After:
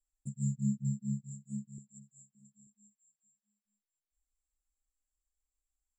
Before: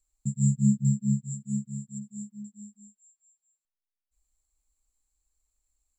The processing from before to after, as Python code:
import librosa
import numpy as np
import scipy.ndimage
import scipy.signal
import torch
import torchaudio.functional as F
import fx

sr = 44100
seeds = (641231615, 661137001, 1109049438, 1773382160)

p1 = scipy.signal.sosfilt(scipy.signal.cheby1(2, 1.0, [1800.0, 5500.0], 'bandstop', fs=sr, output='sos'), x)
p2 = fx.env_flanger(p1, sr, rest_ms=3.8, full_db=-22.0)
p3 = fx.low_shelf_res(p2, sr, hz=300.0, db=-10.5, q=3.0, at=(1.78, 2.35))
p4 = p3 + fx.echo_single(p3, sr, ms=886, db=-21.5, dry=0)
y = p4 * librosa.db_to_amplitude(-8.5)